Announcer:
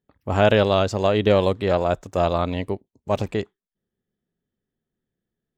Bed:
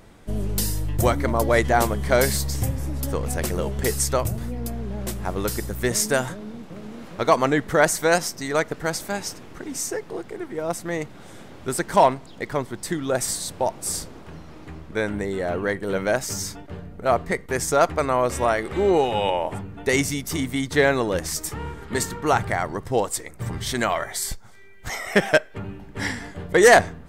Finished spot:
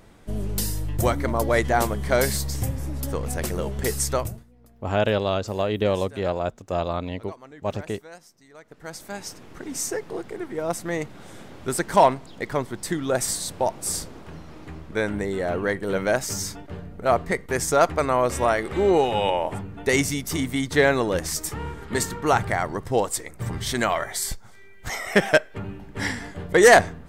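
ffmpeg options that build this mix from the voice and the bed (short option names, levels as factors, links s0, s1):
-filter_complex "[0:a]adelay=4550,volume=0.562[s0];[1:a]volume=14.1,afade=t=out:st=4.18:d=0.26:silence=0.0707946,afade=t=in:st=8.62:d=1.22:silence=0.0562341[s1];[s0][s1]amix=inputs=2:normalize=0"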